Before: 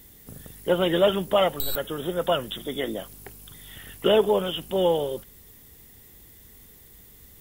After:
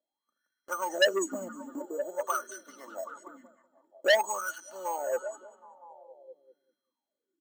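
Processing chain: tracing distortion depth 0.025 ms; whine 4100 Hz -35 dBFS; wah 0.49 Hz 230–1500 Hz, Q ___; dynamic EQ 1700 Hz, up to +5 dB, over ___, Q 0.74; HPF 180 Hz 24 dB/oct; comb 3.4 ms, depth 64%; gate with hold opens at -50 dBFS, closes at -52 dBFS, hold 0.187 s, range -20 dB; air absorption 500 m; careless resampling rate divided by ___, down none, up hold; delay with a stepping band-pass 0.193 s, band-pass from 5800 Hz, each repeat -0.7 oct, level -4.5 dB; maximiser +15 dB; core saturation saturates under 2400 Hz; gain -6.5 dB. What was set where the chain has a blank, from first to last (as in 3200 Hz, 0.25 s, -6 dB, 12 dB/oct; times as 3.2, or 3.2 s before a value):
14, -51 dBFS, 6×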